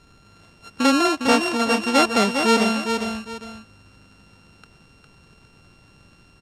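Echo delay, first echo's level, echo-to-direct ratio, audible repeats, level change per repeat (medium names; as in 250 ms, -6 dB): 406 ms, -6.0 dB, -5.5 dB, 2, -11.0 dB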